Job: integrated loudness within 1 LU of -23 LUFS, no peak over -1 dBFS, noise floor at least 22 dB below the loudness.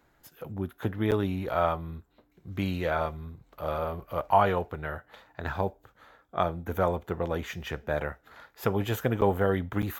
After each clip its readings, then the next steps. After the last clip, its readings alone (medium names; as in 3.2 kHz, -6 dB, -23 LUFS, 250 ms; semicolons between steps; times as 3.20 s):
dropouts 3; longest dropout 8.6 ms; loudness -30.0 LUFS; peak level -9.5 dBFS; loudness target -23.0 LUFS
-> interpolate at 1.11/9.21/9.82 s, 8.6 ms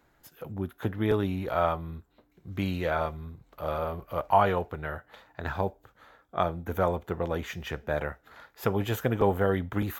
dropouts 0; loudness -30.0 LUFS; peak level -9.5 dBFS; loudness target -23.0 LUFS
-> trim +7 dB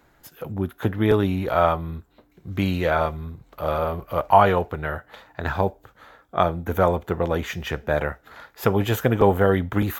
loudness -23.0 LUFS; peak level -2.5 dBFS; noise floor -60 dBFS